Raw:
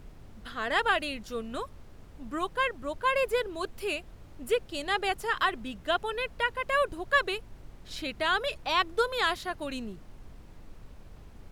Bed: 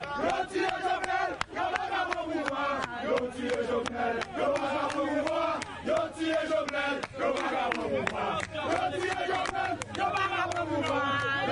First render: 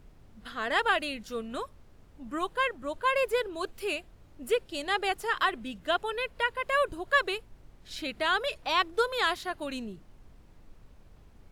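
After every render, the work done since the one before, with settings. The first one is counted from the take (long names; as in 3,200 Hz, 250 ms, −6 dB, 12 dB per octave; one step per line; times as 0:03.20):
noise reduction from a noise print 6 dB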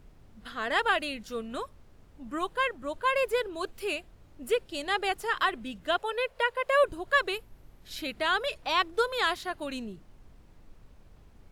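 0:05.98–0:06.84: low shelf with overshoot 410 Hz −7 dB, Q 3
0:07.34–0:08.14: parametric band 12,000 Hz +11.5 dB 0.25 octaves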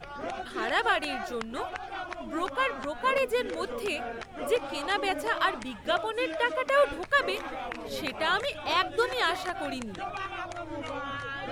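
mix in bed −7 dB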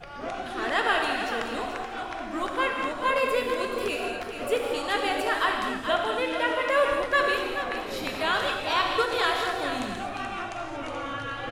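on a send: single-tap delay 430 ms −9 dB
on the sum: reverb whose tail is shaped and stops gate 260 ms flat, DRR 1.5 dB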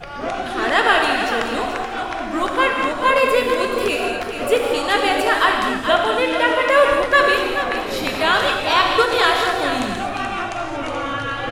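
level +9 dB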